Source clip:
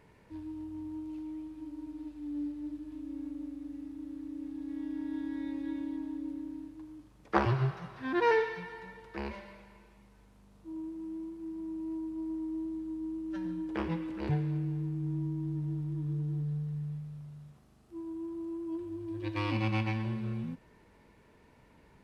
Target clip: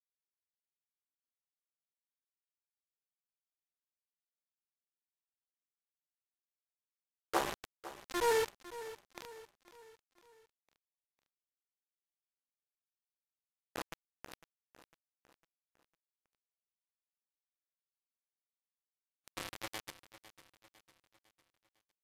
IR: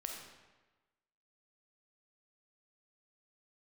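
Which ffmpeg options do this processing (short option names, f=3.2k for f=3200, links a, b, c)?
-filter_complex "[0:a]highpass=f=420:w=0.5412,highpass=f=420:w=1.3066,aemphasis=mode=reproduction:type=riaa,acrusher=bits=4:mix=0:aa=0.000001,asplit=2[a][b];[b]aecho=0:1:503|1006|1509|2012:0.168|0.0789|0.0371|0.0174[c];[a][c]amix=inputs=2:normalize=0,volume=-5dB" -ar 32000 -c:a aac -b:a 96k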